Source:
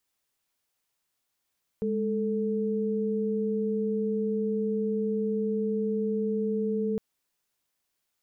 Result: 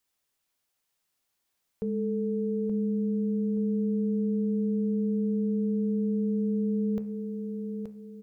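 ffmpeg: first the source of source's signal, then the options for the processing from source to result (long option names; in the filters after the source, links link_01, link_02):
-f lavfi -i "aevalsrc='0.0398*(sin(2*PI*207.65*t)+sin(2*PI*440*t))':duration=5.16:sample_rate=44100"
-filter_complex "[0:a]bandreject=frequency=72.85:width_type=h:width=4,bandreject=frequency=145.7:width_type=h:width=4,bandreject=frequency=218.55:width_type=h:width=4,bandreject=frequency=291.4:width_type=h:width=4,bandreject=frequency=364.25:width_type=h:width=4,bandreject=frequency=437.1:width_type=h:width=4,bandreject=frequency=509.95:width_type=h:width=4,bandreject=frequency=582.8:width_type=h:width=4,bandreject=frequency=655.65:width_type=h:width=4,bandreject=frequency=728.5:width_type=h:width=4,bandreject=frequency=801.35:width_type=h:width=4,bandreject=frequency=874.2:width_type=h:width=4,bandreject=frequency=947.05:width_type=h:width=4,bandreject=frequency=1019.9:width_type=h:width=4,bandreject=frequency=1092.75:width_type=h:width=4,bandreject=frequency=1165.6:width_type=h:width=4,bandreject=frequency=1238.45:width_type=h:width=4,bandreject=frequency=1311.3:width_type=h:width=4,bandreject=frequency=1384.15:width_type=h:width=4,bandreject=frequency=1457:width_type=h:width=4,bandreject=frequency=1529.85:width_type=h:width=4,bandreject=frequency=1602.7:width_type=h:width=4,bandreject=frequency=1675.55:width_type=h:width=4,bandreject=frequency=1748.4:width_type=h:width=4,bandreject=frequency=1821.25:width_type=h:width=4,bandreject=frequency=1894.1:width_type=h:width=4,bandreject=frequency=1966.95:width_type=h:width=4,bandreject=frequency=2039.8:width_type=h:width=4,bandreject=frequency=2112.65:width_type=h:width=4,bandreject=frequency=2185.5:width_type=h:width=4,bandreject=frequency=2258.35:width_type=h:width=4,bandreject=frequency=2331.2:width_type=h:width=4,bandreject=frequency=2404.05:width_type=h:width=4,bandreject=frequency=2476.9:width_type=h:width=4,bandreject=frequency=2549.75:width_type=h:width=4,bandreject=frequency=2622.6:width_type=h:width=4,bandreject=frequency=2695.45:width_type=h:width=4,asplit=2[link_01][link_02];[link_02]aecho=0:1:876|1752|2628|3504:0.473|0.156|0.0515|0.017[link_03];[link_01][link_03]amix=inputs=2:normalize=0"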